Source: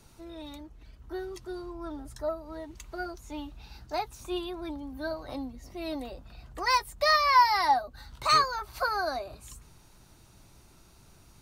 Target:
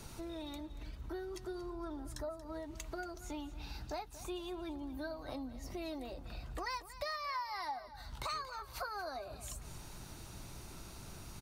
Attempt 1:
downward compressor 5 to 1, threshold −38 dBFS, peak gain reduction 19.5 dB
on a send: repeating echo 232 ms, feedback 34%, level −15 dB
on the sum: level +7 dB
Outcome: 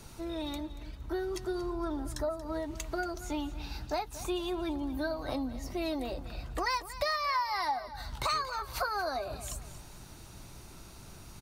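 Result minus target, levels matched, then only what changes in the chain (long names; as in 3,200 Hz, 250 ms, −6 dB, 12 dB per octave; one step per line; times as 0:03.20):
downward compressor: peak gain reduction −9 dB
change: downward compressor 5 to 1, threshold −49 dBFS, peak gain reduction 28 dB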